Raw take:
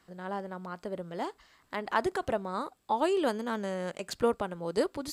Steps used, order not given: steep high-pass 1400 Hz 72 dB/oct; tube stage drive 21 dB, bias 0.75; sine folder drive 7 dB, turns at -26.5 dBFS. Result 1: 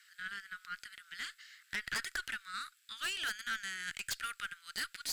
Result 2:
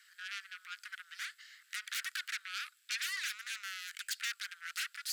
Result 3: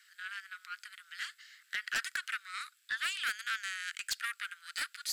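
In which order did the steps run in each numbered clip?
steep high-pass > sine folder > tube stage; sine folder > tube stage > steep high-pass; tube stage > steep high-pass > sine folder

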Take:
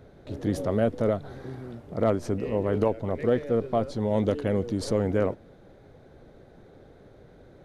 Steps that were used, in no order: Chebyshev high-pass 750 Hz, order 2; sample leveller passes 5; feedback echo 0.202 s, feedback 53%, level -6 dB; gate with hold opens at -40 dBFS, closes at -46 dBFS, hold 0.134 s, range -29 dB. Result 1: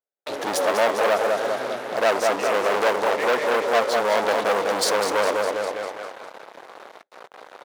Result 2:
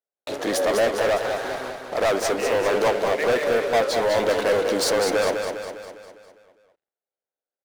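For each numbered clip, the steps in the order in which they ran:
feedback echo > gate with hold > sample leveller > Chebyshev high-pass; Chebyshev high-pass > gate with hold > sample leveller > feedback echo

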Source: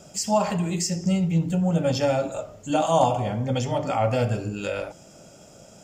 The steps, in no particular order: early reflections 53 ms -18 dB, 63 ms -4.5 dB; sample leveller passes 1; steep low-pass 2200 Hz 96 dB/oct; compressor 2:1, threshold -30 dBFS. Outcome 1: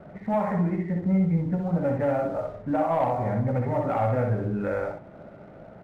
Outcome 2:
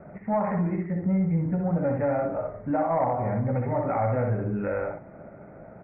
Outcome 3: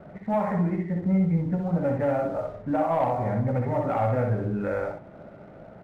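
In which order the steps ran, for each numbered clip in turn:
steep low-pass > compressor > sample leveller > early reflections; early reflections > compressor > sample leveller > steep low-pass; compressor > steep low-pass > sample leveller > early reflections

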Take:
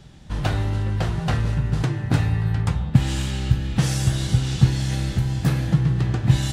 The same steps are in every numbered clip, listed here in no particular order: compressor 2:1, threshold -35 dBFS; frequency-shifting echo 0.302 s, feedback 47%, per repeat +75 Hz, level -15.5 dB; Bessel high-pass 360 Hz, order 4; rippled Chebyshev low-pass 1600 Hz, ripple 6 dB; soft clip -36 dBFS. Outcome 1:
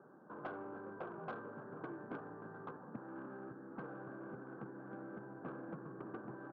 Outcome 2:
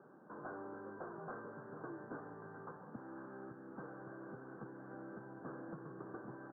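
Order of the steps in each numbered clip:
compressor > rippled Chebyshev low-pass > frequency-shifting echo > Bessel high-pass > soft clip; compressor > Bessel high-pass > soft clip > rippled Chebyshev low-pass > frequency-shifting echo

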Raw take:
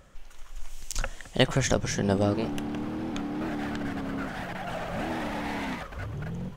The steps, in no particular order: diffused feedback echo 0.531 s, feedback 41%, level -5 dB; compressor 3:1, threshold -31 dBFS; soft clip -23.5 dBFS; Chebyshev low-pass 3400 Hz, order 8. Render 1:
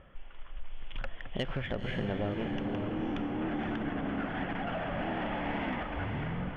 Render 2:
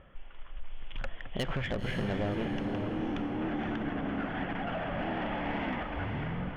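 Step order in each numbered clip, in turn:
Chebyshev low-pass > compressor > soft clip > diffused feedback echo; Chebyshev low-pass > soft clip > compressor > diffused feedback echo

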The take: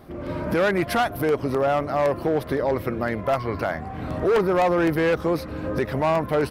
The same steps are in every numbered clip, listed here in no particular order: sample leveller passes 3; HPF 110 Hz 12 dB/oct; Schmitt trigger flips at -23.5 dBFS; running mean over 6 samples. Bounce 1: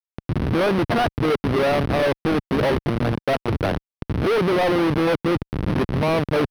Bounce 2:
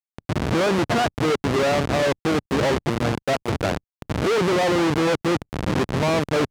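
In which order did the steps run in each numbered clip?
Schmitt trigger > HPF > sample leveller > running mean; Schmitt trigger > running mean > sample leveller > HPF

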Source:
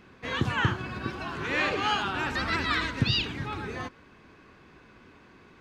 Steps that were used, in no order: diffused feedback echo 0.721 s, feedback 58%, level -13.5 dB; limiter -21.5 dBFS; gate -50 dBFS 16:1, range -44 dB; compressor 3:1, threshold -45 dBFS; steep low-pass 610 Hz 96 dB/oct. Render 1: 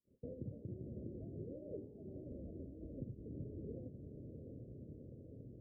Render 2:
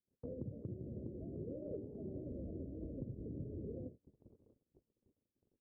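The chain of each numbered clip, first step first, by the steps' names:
gate > diffused feedback echo > limiter > compressor > steep low-pass; limiter > steep low-pass > compressor > diffused feedback echo > gate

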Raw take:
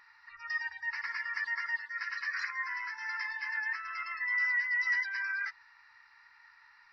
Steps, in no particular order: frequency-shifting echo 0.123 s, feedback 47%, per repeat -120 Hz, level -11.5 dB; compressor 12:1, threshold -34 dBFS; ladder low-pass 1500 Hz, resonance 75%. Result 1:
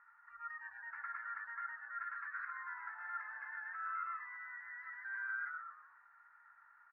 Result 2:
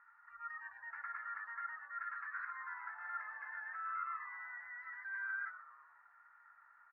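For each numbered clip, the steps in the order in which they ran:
frequency-shifting echo > compressor > ladder low-pass; compressor > ladder low-pass > frequency-shifting echo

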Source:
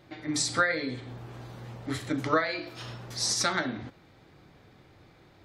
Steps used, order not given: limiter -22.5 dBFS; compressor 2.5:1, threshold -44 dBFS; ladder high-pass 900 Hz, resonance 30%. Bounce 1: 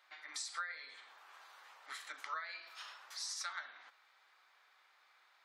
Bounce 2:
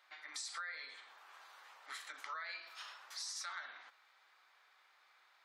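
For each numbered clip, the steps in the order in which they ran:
ladder high-pass > compressor > limiter; limiter > ladder high-pass > compressor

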